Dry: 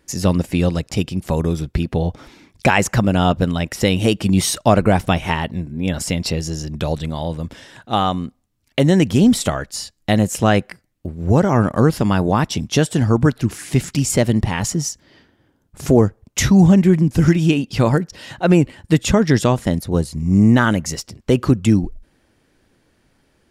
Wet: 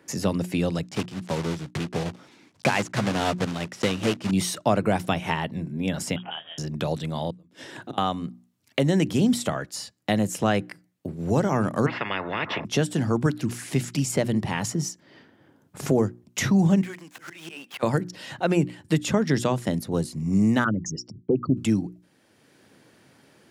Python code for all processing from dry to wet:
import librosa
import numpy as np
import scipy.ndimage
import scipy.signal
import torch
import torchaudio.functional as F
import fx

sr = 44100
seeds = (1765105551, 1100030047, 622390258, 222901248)

y = fx.chain(x, sr, fx.block_float(bits=3),
    fx.lowpass(hz=7400.0, slope=12),
    fx.upward_expand(threshold_db=-25.0, expansion=1.5), at=(0.85, 4.32))
y = fx.chain(y, sr, fx.highpass(hz=580.0, slope=12),
    fx.freq_invert(carrier_hz=3500), at=(6.16, 6.58))
y = fx.chain(y, sr, fx.peak_eq(hz=340.0, db=9.5, octaves=0.66),
    fx.gate_flip(shuts_db=-19.0, range_db=-30), at=(7.3, 7.98))
y = fx.chain(y, sr, fx.lowpass(hz=1900.0, slope=24),
    fx.notch_comb(f0_hz=770.0),
    fx.spectral_comp(ratio=10.0), at=(11.86, 12.65))
y = fx.chain(y, sr, fx.median_filter(points=9),
    fx.highpass(hz=970.0, slope=12),
    fx.auto_swell(attack_ms=185.0), at=(16.81, 17.83))
y = fx.chain(y, sr, fx.envelope_sharpen(power=3.0),
    fx.doppler_dist(depth_ms=0.12), at=(20.64, 21.57))
y = scipy.signal.sosfilt(scipy.signal.butter(4, 110.0, 'highpass', fs=sr, output='sos'), y)
y = fx.hum_notches(y, sr, base_hz=60, count=6)
y = fx.band_squash(y, sr, depth_pct=40)
y = F.gain(torch.from_numpy(y), -6.5).numpy()